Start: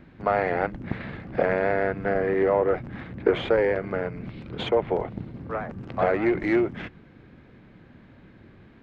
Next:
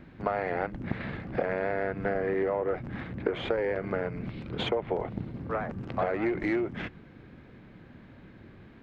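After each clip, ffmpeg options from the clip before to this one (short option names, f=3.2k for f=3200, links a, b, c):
-af "acompressor=threshold=-25dB:ratio=6"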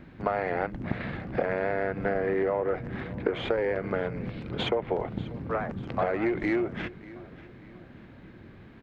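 -af "aecho=1:1:590|1180|1770:0.106|0.0455|0.0196,volume=1.5dB"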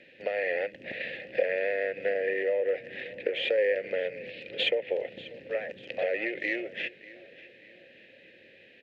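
-filter_complex "[0:a]aexciter=amount=3.6:drive=9.2:freq=2.1k,asplit=3[a][b][c];[a]bandpass=f=530:t=q:w=8,volume=0dB[d];[b]bandpass=f=1.84k:t=q:w=8,volume=-6dB[e];[c]bandpass=f=2.48k:t=q:w=8,volume=-9dB[f];[d][e][f]amix=inputs=3:normalize=0,volume=6dB"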